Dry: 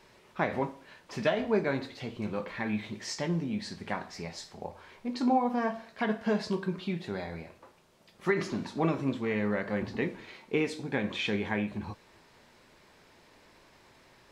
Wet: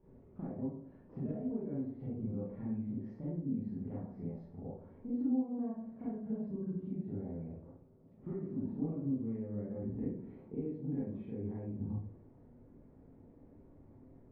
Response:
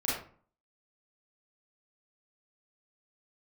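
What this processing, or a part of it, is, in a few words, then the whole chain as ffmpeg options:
television next door: -filter_complex "[0:a]acompressor=threshold=-39dB:ratio=6,lowpass=290[a];[1:a]atrim=start_sample=2205[b];[a][b]afir=irnorm=-1:irlink=0"

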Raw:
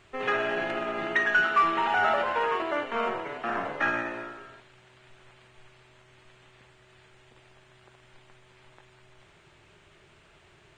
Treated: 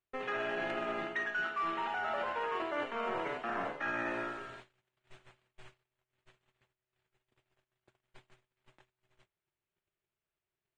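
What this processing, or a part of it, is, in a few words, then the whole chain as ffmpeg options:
compression on the reversed sound: -af "bandreject=f=50:t=h:w=6,bandreject=f=100:t=h:w=6,bandreject=f=150:t=h:w=6,agate=range=-37dB:threshold=-52dB:ratio=16:detection=peak,areverse,acompressor=threshold=-33dB:ratio=16,areverse,volume=1dB"

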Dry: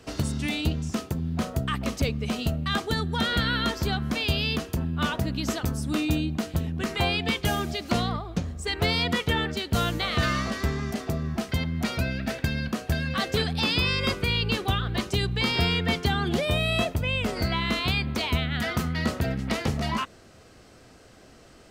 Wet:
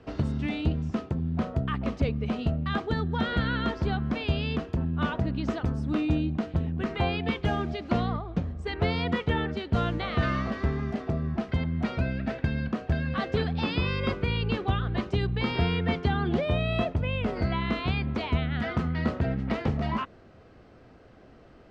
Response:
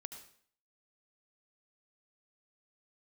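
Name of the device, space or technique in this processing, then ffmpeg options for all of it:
phone in a pocket: -af "lowpass=3.7k,highshelf=f=2.1k:g=-10"

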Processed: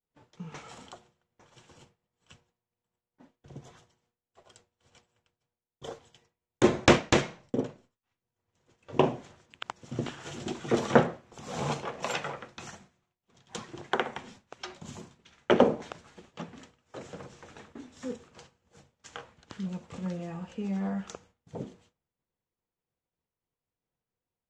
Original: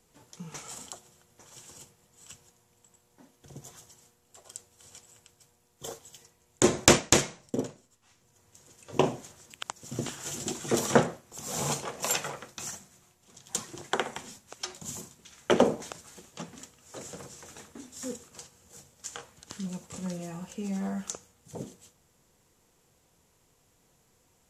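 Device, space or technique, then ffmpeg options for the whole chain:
hearing-loss simulation: -af "lowpass=3.2k,agate=range=-33dB:threshold=-53dB:ratio=3:detection=peak,volume=1dB"

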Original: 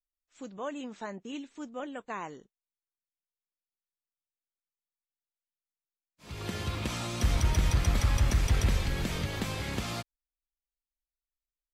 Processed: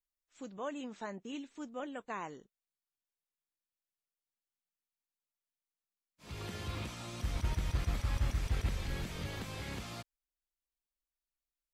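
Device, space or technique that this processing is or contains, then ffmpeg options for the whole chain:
de-esser from a sidechain: -filter_complex "[0:a]asplit=2[a][b];[b]highpass=5.6k,apad=whole_len=517634[c];[a][c]sidechaincompress=threshold=-50dB:ratio=8:attack=2.5:release=31,volume=-3dB"

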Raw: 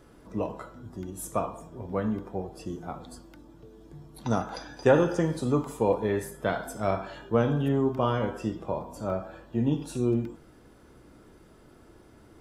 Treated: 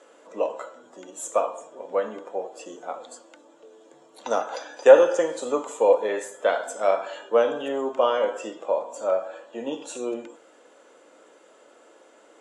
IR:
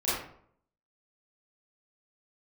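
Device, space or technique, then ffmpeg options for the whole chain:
phone speaker on a table: -af "highpass=f=360:w=0.5412,highpass=f=360:w=1.3066,equalizer=f=370:t=q:w=4:g=-7,equalizer=f=540:t=q:w=4:g=8,equalizer=f=2.9k:t=q:w=4:g=4,equalizer=f=5k:t=q:w=4:g=-6,equalizer=f=7.2k:t=q:w=4:g=10,lowpass=f=8.5k:w=0.5412,lowpass=f=8.5k:w=1.3066,volume=4dB"

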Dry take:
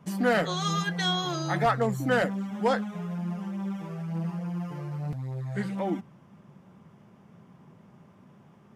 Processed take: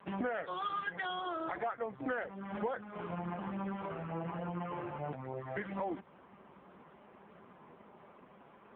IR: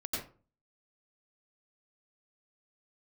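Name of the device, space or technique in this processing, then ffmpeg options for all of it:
voicemail: -af "highpass=410,lowpass=2.8k,acompressor=threshold=-40dB:ratio=12,volume=7.5dB" -ar 8000 -c:a libopencore_amrnb -b:a 5150

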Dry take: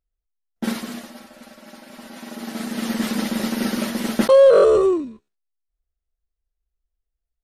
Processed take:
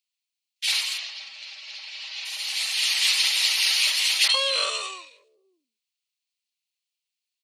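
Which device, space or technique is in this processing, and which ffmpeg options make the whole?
headphones lying on a table: -filter_complex "[0:a]equalizer=f=13k:t=o:w=0.28:g=-14.5,asplit=3[a][b][c];[a]afade=t=out:st=0.97:d=0.02[d];[b]lowpass=f=5.7k:w=0.5412,lowpass=f=5.7k:w=1.3066,afade=t=in:st=0.97:d=0.02,afade=t=out:st=2.24:d=0.02[e];[c]afade=t=in:st=2.24:d=0.02[f];[d][e][f]amix=inputs=3:normalize=0,highpass=f=1k:w=0.5412,highpass=f=1k:w=1.3066,highshelf=f=1.9k:t=q:w=3:g=9.5,equalizer=f=4.3k:t=o:w=0.22:g=6.5,acrossover=split=240|1900[g][h][i];[h]adelay=50[j];[g]adelay=600[k];[k][j][i]amix=inputs=3:normalize=0"

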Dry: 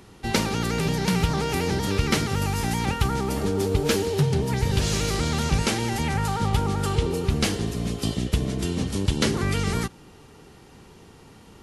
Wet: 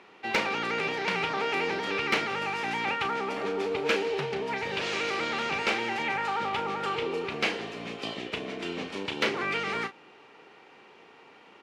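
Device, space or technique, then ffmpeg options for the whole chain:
megaphone: -filter_complex "[0:a]highpass=470,lowpass=2.9k,equalizer=f=2.4k:t=o:w=0.5:g=6.5,asoftclip=type=hard:threshold=-16.5dB,asplit=2[a][b];[b]adelay=35,volume=-9.5dB[c];[a][c]amix=inputs=2:normalize=0"

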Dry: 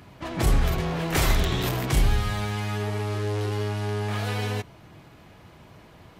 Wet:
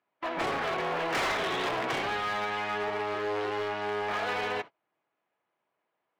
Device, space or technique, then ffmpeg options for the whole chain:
walkie-talkie: -af "highpass=510,lowpass=2.5k,asoftclip=type=hard:threshold=-30.5dB,agate=range=-31dB:threshold=-43dB:ratio=16:detection=peak,volume=4.5dB"

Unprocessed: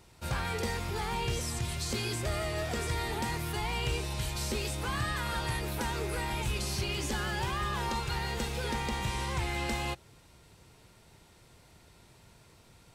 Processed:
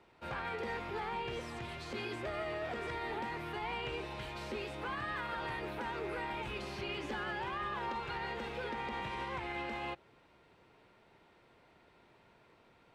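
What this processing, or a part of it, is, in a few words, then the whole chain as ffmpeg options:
DJ mixer with the lows and highs turned down: -filter_complex "[0:a]acrossover=split=220 3200:gain=0.2 1 0.0708[a][b][c];[a][b][c]amix=inputs=3:normalize=0,alimiter=level_in=4.5dB:limit=-24dB:level=0:latency=1:release=60,volume=-4.5dB,volume=-1.5dB"

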